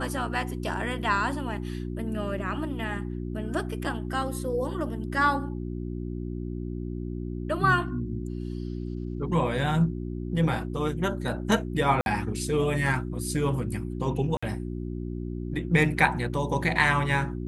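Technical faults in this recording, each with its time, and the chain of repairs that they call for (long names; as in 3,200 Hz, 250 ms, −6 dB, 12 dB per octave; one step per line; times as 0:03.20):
mains hum 60 Hz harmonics 6 −33 dBFS
0:12.01–0:12.06: drop-out 51 ms
0:14.37–0:14.43: drop-out 55 ms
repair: hum removal 60 Hz, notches 6
repair the gap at 0:12.01, 51 ms
repair the gap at 0:14.37, 55 ms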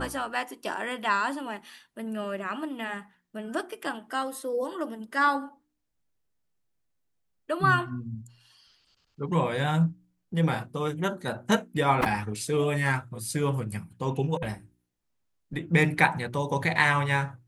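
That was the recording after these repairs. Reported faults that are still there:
none of them is left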